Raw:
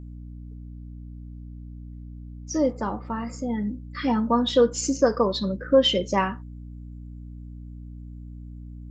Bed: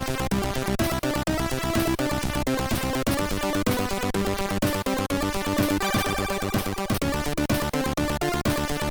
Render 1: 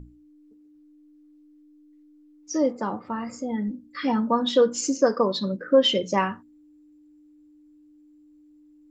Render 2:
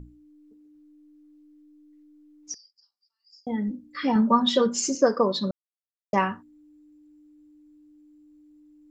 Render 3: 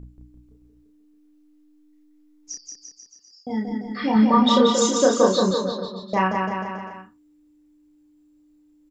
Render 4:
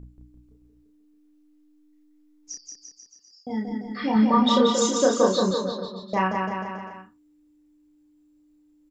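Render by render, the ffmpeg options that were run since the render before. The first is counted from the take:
ffmpeg -i in.wav -af "bandreject=frequency=60:width_type=h:width=6,bandreject=frequency=120:width_type=h:width=6,bandreject=frequency=180:width_type=h:width=6,bandreject=frequency=240:width_type=h:width=6" out.wav
ffmpeg -i in.wav -filter_complex "[0:a]asettb=1/sr,asplit=3[link_01][link_02][link_03];[link_01]atrim=end=2.544[link_04];[link_02]atrim=start=2.54:end=3.47,asetpts=PTS-STARTPTS,afade=type=in:duration=0.004:curve=qsin,afade=type=out:start_time=0.926:duration=0.004:curve=qsin,asuperpass=centerf=5000:order=4:qfactor=7.2[link_05];[link_03]atrim=start=3.466[link_06];[link_04][link_05]acrossfade=duration=0.004:curve1=hsin:curve2=qsin[link_07];[link_07][link_06]acrossfade=duration=0.004:curve1=qsin:curve2=hsin,asettb=1/sr,asplit=3[link_08][link_09][link_10];[link_08]atrim=end=4.154[link_11];[link_09]atrim=start=4.15:end=4.95,asetpts=PTS-STARTPTS,afade=type=in:duration=0.004:curve=qsin,afade=type=out:start_time=0.796:duration=0.004:curve=qsin,aecho=1:1:5.1:0.84,atrim=end_sample=35280[link_12];[link_10]atrim=start=4.946[link_13];[link_11][link_12]acrossfade=duration=0.004:curve1=hsin:curve2=qsin[link_14];[link_14][link_13]acrossfade=duration=0.004:curve1=qsin:curve2=hsin,asplit=3[link_15][link_16][link_17];[link_15]atrim=end=5.51,asetpts=PTS-STARTPTS,afade=type=out:start_time=5.506:duration=0.004:curve=hsin[link_18];[link_16]atrim=start=5.51:end=6.13,asetpts=PTS-STARTPTS,volume=0[link_19];[link_17]atrim=start=6.13,asetpts=PTS-STARTPTS,afade=type=in:duration=0.004:curve=hsin[link_20];[link_18][link_19][link_20]concat=n=3:v=0:a=1" out.wav
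ffmpeg -i in.wav -filter_complex "[0:a]asplit=2[link_01][link_02];[link_02]adelay=32,volume=-2dB[link_03];[link_01][link_03]amix=inputs=2:normalize=0,asplit=2[link_04][link_05];[link_05]aecho=0:1:180|342|487.8|619|737.1:0.631|0.398|0.251|0.158|0.1[link_06];[link_04][link_06]amix=inputs=2:normalize=0" out.wav
ffmpeg -i in.wav -af "volume=-2.5dB" out.wav

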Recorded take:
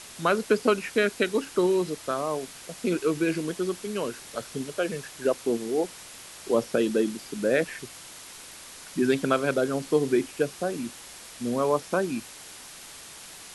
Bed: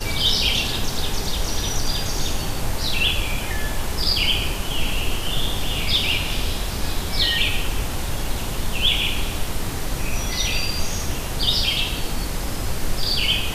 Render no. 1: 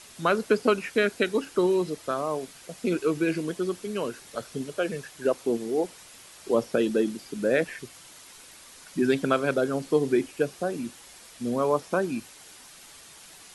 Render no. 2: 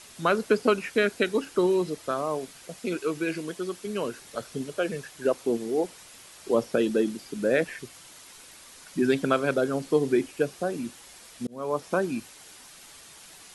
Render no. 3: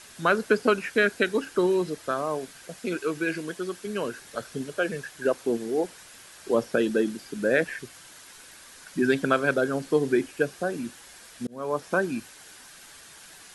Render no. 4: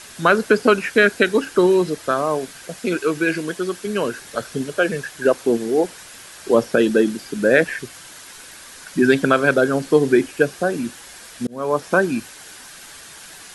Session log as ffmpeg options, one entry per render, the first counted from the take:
ffmpeg -i in.wav -af "afftdn=noise_reduction=6:noise_floor=-45" out.wav
ffmpeg -i in.wav -filter_complex "[0:a]asettb=1/sr,asplit=3[link_01][link_02][link_03];[link_01]atrim=end=2.794[link_04];[link_02]atrim=start=2.79:end=3.85,asetpts=PTS-STARTPTS,afade=type=in:duration=0.004:curve=qsin,afade=type=out:start_time=1.056:duration=0.004:curve=qsin,lowshelf=frequency=480:gain=-6[link_05];[link_03]atrim=start=3.846[link_06];[link_04][link_05]acrossfade=duration=0.004:curve1=hsin:curve2=qsin[link_07];[link_07][link_06]acrossfade=duration=0.004:curve1=qsin:curve2=hsin,asplit=2[link_08][link_09];[link_08]atrim=end=11.47,asetpts=PTS-STARTPTS,afade=type=out:start_time=11.466:duration=0.004:curve=hsin[link_10];[link_09]atrim=start=11.47,asetpts=PTS-STARTPTS,afade=type=in:duration=0.41[link_11];[link_10][link_11]concat=n=2:v=0:a=1" out.wav
ffmpeg -i in.wav -af "equalizer=frequency=1600:width_type=o:width=0.3:gain=7.5" out.wav
ffmpeg -i in.wav -af "volume=8dB,alimiter=limit=-2dB:level=0:latency=1" out.wav

